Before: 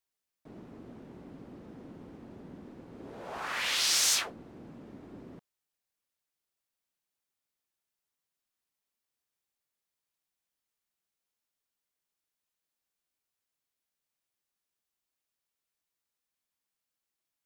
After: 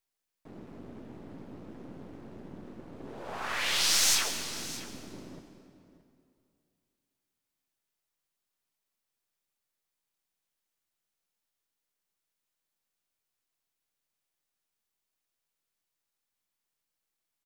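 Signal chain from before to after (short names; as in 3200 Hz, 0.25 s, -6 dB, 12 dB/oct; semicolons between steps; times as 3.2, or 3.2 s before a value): half-wave gain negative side -7 dB; echo 0.62 s -16.5 dB; on a send at -8 dB: reverb RT60 2.4 s, pre-delay 96 ms; on the sum: gain +3.5 dB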